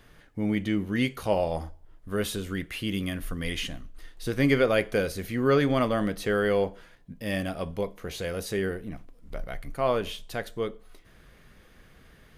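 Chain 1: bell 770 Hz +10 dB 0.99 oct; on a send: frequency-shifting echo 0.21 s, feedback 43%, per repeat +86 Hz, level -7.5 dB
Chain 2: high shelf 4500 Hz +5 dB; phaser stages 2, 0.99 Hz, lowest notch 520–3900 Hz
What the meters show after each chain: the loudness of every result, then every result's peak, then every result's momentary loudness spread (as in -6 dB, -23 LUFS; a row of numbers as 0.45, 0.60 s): -24.5, -30.5 LUFS; -5.5, -11.5 dBFS; 15, 15 LU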